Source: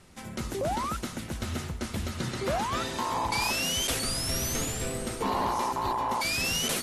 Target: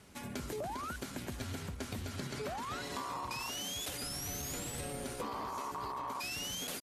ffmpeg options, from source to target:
-af "highpass=f=45:p=1,acompressor=threshold=-34dB:ratio=10,asetrate=48091,aresample=44100,atempo=0.917004,volume=-2.5dB"

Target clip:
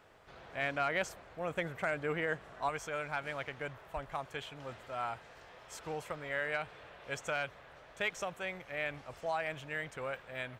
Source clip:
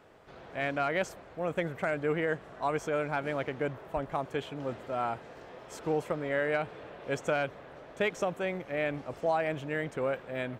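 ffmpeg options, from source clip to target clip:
-af "asetnsamples=n=441:p=0,asendcmd='2.69 equalizer g -14',equalizer=f=290:t=o:w=2.6:g=-7.5"

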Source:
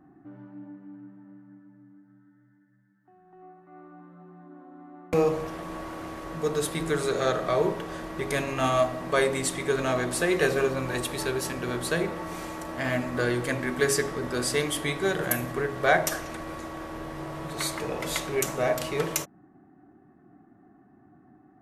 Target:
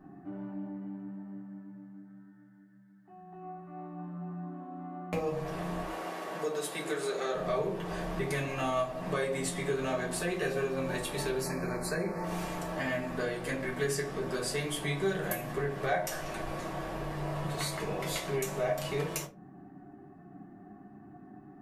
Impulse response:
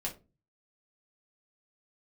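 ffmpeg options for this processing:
-filter_complex "[0:a]asettb=1/sr,asplit=3[a][b][c];[a]atrim=end=5.844[d];[b]atrim=start=5.84:end=7.35,asetpts=PTS-STARTPTS,afade=t=in:d=0.004:c=qsin,afade=t=out:st=1.506:d=0.004:c=qsin,highpass=340[e];[c]atrim=start=7.346[f];[d][e]acrossfade=d=0.004:c1=hsin:c2=qsin[g];[g][f]acrossfade=d=0.004:c1=qsin:c2=hsin,acompressor=threshold=-37dB:ratio=3,asettb=1/sr,asplit=3[h][i][j];[h]atrim=end=11.414[k];[i]atrim=start=11.41:end=12.24,asetpts=PTS-STARTPTS,afade=t=in:d=0.004:c=qsin,afade=t=out:st=0.826:d=0.004:c=qsin,asuperstop=centerf=3200:order=12:qfactor=2.1[l];[j]atrim=start=12.236[m];[k][l]acrossfade=d=0.004:c1=hsin:c2=qsin[n];[n][m]acrossfade=d=0.004:c1=qsin:c2=hsin[o];[1:a]atrim=start_sample=2205[p];[o][p]afir=irnorm=-1:irlink=0,volume=2dB"

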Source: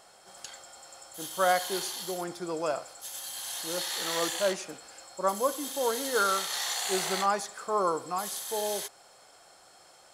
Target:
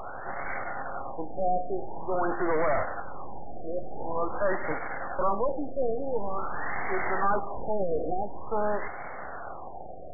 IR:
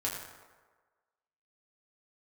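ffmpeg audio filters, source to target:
-filter_complex "[0:a]asplit=2[a][b];[b]highpass=f=720:p=1,volume=34dB,asoftclip=type=tanh:threshold=-13dB[c];[a][c]amix=inputs=2:normalize=0,lowpass=f=5.2k:p=1,volume=-6dB,aeval=exprs='max(val(0),0)':c=same,afftfilt=real='re*lt(b*sr/1024,750*pow(2300/750,0.5+0.5*sin(2*PI*0.47*pts/sr)))':imag='im*lt(b*sr/1024,750*pow(2300/750,0.5+0.5*sin(2*PI*0.47*pts/sr)))':win_size=1024:overlap=0.75"

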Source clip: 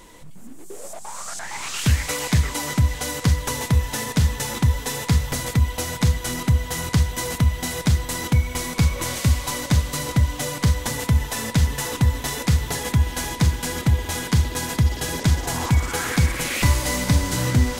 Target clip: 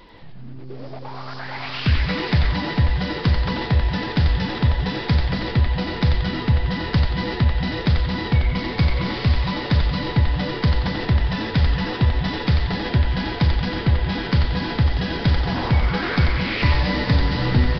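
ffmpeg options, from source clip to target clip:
-filter_complex "[0:a]aresample=11025,aresample=44100,asplit=7[a][b][c][d][e][f][g];[b]adelay=90,afreqshift=-130,volume=-4dB[h];[c]adelay=180,afreqshift=-260,volume=-10dB[i];[d]adelay=270,afreqshift=-390,volume=-16dB[j];[e]adelay=360,afreqshift=-520,volume=-22.1dB[k];[f]adelay=450,afreqshift=-650,volume=-28.1dB[l];[g]adelay=540,afreqshift=-780,volume=-34.1dB[m];[a][h][i][j][k][l][m]amix=inputs=7:normalize=0"

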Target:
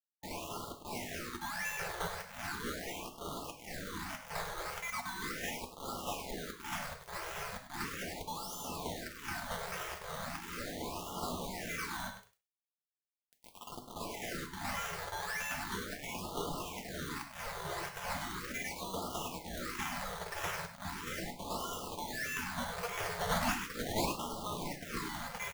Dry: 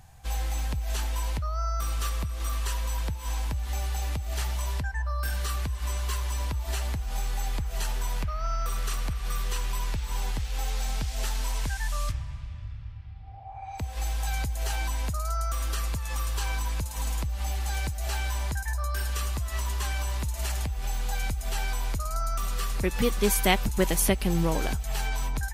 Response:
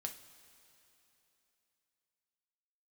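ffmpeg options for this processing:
-filter_complex "[0:a]highpass=f=170:w=0.5412,highpass=f=170:w=1.3066,acrossover=split=1300[a][b];[a]acompressor=threshold=-48dB:ratio=10[c];[b]asoftclip=type=tanh:threshold=-24dB[d];[c][d]amix=inputs=2:normalize=0,acrusher=samples=18:mix=1:aa=0.000001:lfo=1:lforange=10.8:lforate=1.6,asetrate=57191,aresample=44100,atempo=0.771105,acrusher=bits=6:mix=0:aa=0.000001,aecho=1:1:100:0.282[e];[1:a]atrim=start_sample=2205,atrim=end_sample=6174[f];[e][f]afir=irnorm=-1:irlink=0,afftfilt=real='re*(1-between(b*sr/1024,240*pow(2000/240,0.5+0.5*sin(2*PI*0.38*pts/sr))/1.41,240*pow(2000/240,0.5+0.5*sin(2*PI*0.38*pts/sr))*1.41))':imag='im*(1-between(b*sr/1024,240*pow(2000/240,0.5+0.5*sin(2*PI*0.38*pts/sr))/1.41,240*pow(2000/240,0.5+0.5*sin(2*PI*0.38*pts/sr))*1.41))':win_size=1024:overlap=0.75,volume=2dB"

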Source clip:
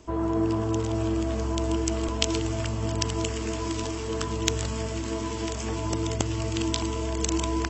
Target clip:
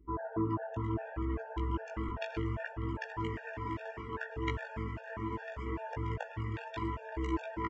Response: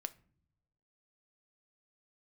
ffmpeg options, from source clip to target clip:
-filter_complex "[0:a]afftdn=nr=22:nf=-44,aeval=exprs='val(0)+0.00158*(sin(2*PI*50*n/s)+sin(2*PI*2*50*n/s)/2+sin(2*PI*3*50*n/s)/3+sin(2*PI*4*50*n/s)/4+sin(2*PI*5*50*n/s)/5)':c=same,flanger=delay=15.5:depth=4:speed=0.69,lowpass=f=1.8k:t=q:w=4.1,flanger=delay=6.8:depth=2.9:regen=-85:speed=0.28:shape=triangular,adynamicequalizer=threshold=0.00282:dfrequency=1000:dqfactor=2.6:tfrequency=1000:tqfactor=2.6:attack=5:release=100:ratio=0.375:range=1.5:mode=boostabove:tftype=bell,asplit=2[a][b];[b]adelay=594,lowpass=f=1k:p=1,volume=-15dB,asplit=2[c][d];[d]adelay=594,lowpass=f=1k:p=1,volume=0.44,asplit=2[e][f];[f]adelay=594,lowpass=f=1k:p=1,volume=0.44,asplit=2[g][h];[h]adelay=594,lowpass=f=1k:p=1,volume=0.44[i];[c][e][g][i]amix=inputs=4:normalize=0[j];[a][j]amix=inputs=2:normalize=0,afftfilt=real='re*gt(sin(2*PI*2.5*pts/sr)*(1-2*mod(floor(b*sr/1024/470),2)),0)':imag='im*gt(sin(2*PI*2.5*pts/sr)*(1-2*mod(floor(b*sr/1024/470),2)),0)':win_size=1024:overlap=0.75"

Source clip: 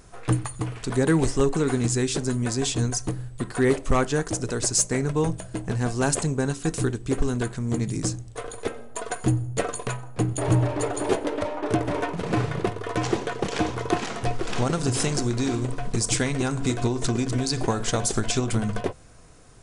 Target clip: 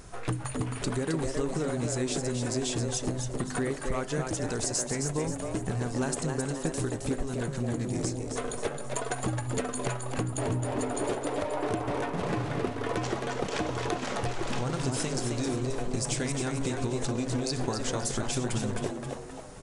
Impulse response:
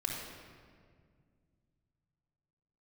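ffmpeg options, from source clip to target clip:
-filter_complex "[0:a]acompressor=threshold=-31dB:ratio=6,asplit=6[a][b][c][d][e][f];[b]adelay=266,afreqshift=130,volume=-5.5dB[g];[c]adelay=532,afreqshift=260,volume=-12.8dB[h];[d]adelay=798,afreqshift=390,volume=-20.2dB[i];[e]adelay=1064,afreqshift=520,volume=-27.5dB[j];[f]adelay=1330,afreqshift=650,volume=-34.8dB[k];[a][g][h][i][j][k]amix=inputs=6:normalize=0,volume=2.5dB"

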